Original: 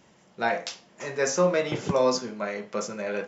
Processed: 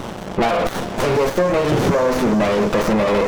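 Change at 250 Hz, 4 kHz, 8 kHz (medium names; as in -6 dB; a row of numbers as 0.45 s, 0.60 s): +13.5 dB, +7.0 dB, no reading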